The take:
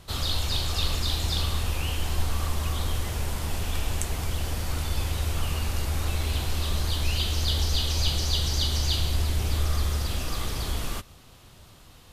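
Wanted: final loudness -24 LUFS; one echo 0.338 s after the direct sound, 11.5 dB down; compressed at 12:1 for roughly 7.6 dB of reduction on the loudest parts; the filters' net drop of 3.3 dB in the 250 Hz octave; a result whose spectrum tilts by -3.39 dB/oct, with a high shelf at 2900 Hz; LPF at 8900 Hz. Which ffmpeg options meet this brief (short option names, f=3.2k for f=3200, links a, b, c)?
-af "lowpass=8.9k,equalizer=f=250:t=o:g=-5,highshelf=f=2.9k:g=8.5,acompressor=threshold=-26dB:ratio=12,aecho=1:1:338:0.266,volume=6.5dB"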